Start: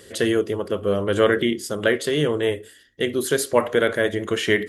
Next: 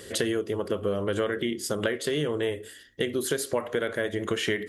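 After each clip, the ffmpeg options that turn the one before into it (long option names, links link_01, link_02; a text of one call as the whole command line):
ffmpeg -i in.wav -af "acompressor=threshold=-27dB:ratio=6,volume=2.5dB" out.wav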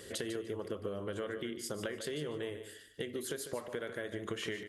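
ffmpeg -i in.wav -af "acompressor=threshold=-34dB:ratio=2,aecho=1:1:148|296|444:0.299|0.0597|0.0119,volume=-6dB" out.wav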